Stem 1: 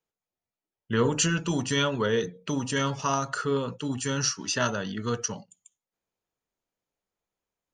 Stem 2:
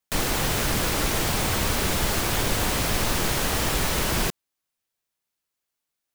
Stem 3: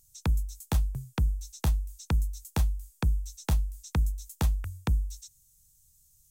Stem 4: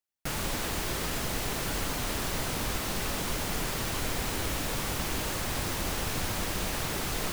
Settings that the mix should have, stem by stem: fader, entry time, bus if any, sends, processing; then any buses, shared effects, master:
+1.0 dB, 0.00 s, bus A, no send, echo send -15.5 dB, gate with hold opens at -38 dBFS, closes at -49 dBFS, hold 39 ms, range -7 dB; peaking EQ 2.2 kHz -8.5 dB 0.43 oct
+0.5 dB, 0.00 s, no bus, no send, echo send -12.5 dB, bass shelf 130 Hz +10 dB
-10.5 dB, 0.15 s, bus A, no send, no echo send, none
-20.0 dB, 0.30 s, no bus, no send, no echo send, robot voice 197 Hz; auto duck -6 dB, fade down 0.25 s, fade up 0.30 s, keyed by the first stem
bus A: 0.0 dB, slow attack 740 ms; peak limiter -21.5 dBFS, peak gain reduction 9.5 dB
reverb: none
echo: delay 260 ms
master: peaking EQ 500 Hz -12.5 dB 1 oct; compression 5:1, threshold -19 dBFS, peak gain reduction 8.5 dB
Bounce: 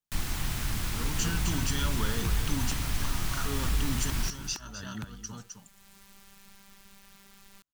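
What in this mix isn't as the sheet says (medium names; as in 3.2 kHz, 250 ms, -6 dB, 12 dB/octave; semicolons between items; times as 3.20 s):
stem 2 +0.5 dB -> -10.5 dB; stem 3 -10.5 dB -> -3.5 dB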